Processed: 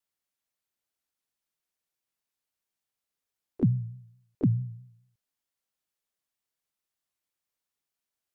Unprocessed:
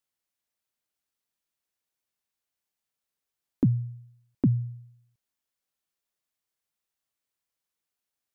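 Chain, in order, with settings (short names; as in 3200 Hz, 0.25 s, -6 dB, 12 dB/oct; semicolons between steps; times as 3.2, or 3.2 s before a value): vibrato 4.6 Hz 86 cents; harmoniser +7 st -15 dB; gain -1.5 dB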